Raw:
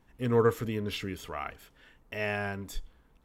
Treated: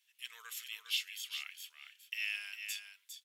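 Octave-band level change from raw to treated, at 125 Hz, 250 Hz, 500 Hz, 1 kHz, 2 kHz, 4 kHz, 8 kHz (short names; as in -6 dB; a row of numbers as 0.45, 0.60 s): under -40 dB, under -40 dB, under -40 dB, -24.0 dB, -3.5 dB, +5.0 dB, +4.5 dB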